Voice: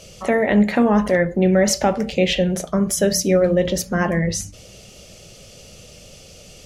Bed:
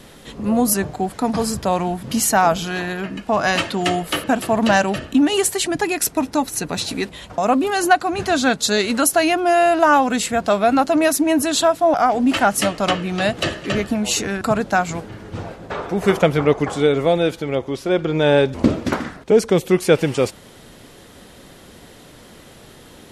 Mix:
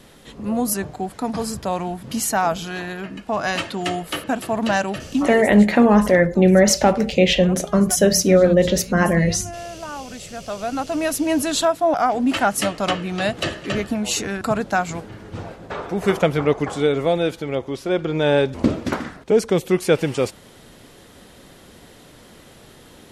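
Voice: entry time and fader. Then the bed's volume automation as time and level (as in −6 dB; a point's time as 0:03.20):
5.00 s, +2.5 dB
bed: 0:05.16 −4.5 dB
0:05.51 −19.5 dB
0:09.91 −19.5 dB
0:11.33 −2.5 dB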